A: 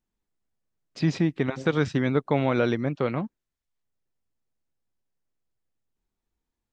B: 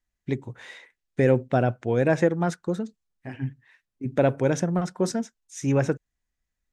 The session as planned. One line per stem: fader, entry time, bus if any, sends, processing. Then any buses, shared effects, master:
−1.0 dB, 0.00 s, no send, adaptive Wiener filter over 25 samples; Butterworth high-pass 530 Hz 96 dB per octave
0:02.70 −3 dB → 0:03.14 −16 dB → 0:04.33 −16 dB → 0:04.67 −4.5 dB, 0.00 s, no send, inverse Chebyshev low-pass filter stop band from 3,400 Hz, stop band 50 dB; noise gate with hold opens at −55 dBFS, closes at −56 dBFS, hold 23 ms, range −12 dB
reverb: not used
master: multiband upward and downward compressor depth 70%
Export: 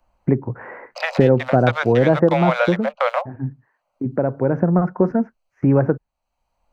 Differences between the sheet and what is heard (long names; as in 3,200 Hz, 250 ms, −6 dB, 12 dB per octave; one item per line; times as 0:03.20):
stem A −1.0 dB → +9.5 dB
stem B −3.0 dB → +8.0 dB